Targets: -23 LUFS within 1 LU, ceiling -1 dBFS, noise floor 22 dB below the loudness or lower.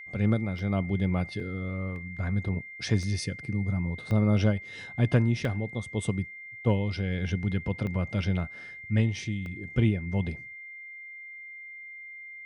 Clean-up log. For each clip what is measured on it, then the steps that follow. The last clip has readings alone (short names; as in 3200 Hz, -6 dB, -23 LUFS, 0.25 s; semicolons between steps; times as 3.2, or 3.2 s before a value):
dropouts 8; longest dropout 1.2 ms; steady tone 2100 Hz; tone level -41 dBFS; loudness -29.5 LUFS; peak -12.0 dBFS; loudness target -23.0 LUFS
-> interpolate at 0.59/1.4/1.96/3.03/4.11/5.45/7.87/9.46, 1.2 ms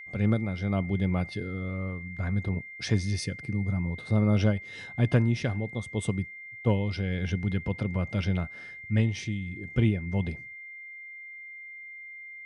dropouts 0; steady tone 2100 Hz; tone level -41 dBFS
-> notch 2100 Hz, Q 30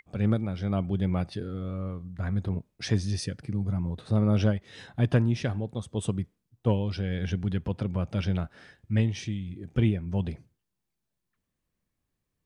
steady tone none; loudness -29.5 LUFS; peak -12.0 dBFS; loudness target -23.0 LUFS
-> gain +6.5 dB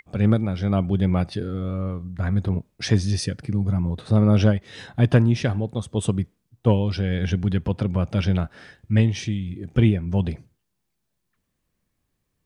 loudness -23.0 LUFS; peak -5.5 dBFS; noise floor -76 dBFS